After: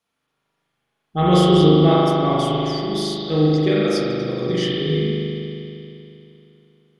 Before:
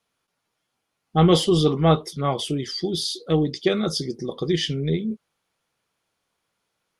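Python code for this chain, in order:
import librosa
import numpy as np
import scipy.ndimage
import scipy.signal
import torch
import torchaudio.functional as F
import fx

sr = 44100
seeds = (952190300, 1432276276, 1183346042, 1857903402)

y = fx.rev_spring(x, sr, rt60_s=2.9, pass_ms=(39,), chirp_ms=40, drr_db=-7.0)
y = y * librosa.db_to_amplitude(-3.5)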